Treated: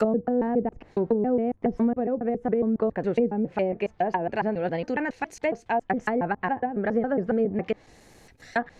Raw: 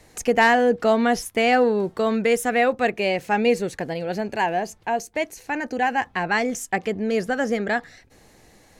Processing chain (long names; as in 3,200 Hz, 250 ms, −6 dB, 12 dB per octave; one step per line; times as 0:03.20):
slices reordered back to front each 138 ms, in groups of 7
treble cut that deepens with the level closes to 370 Hz, closed at −17 dBFS
noise gate with hold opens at −44 dBFS